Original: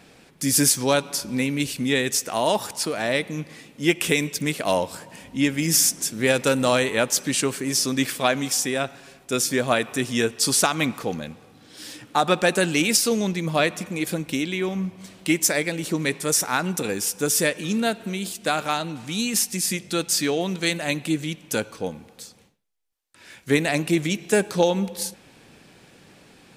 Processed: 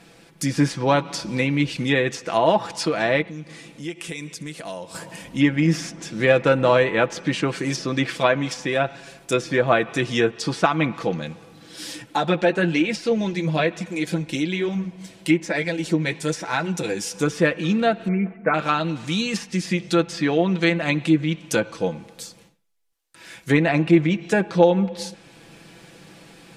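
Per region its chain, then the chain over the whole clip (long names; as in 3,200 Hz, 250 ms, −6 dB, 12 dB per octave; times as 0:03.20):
0:03.22–0:04.95: low-pass filter 11,000 Hz 24 dB per octave + downward compressor 2.5 to 1, threshold −42 dBFS
0:12.02–0:17.11: notch filter 1,200 Hz, Q 7.3 + flanger 1.1 Hz, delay 0.9 ms, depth 8.4 ms, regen −34%
0:18.08–0:18.54: Chebyshev low-pass filter 2,300 Hz, order 6 + comb filter 4.6 ms, depth 57% + one half of a high-frequency compander decoder only
whole clip: comb filter 6 ms, depth 53%; treble cut that deepens with the level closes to 2,200 Hz, closed at −18.5 dBFS; automatic gain control gain up to 3.5 dB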